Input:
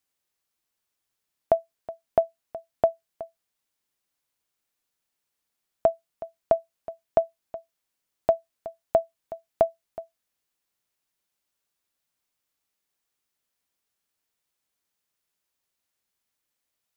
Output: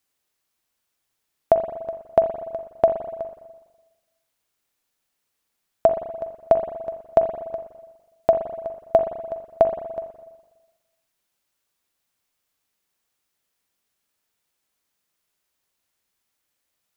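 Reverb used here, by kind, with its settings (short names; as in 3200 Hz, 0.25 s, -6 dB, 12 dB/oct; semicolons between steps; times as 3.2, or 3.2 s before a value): spring tank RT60 1.2 s, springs 41/59 ms, chirp 55 ms, DRR 6.5 dB; gain +4.5 dB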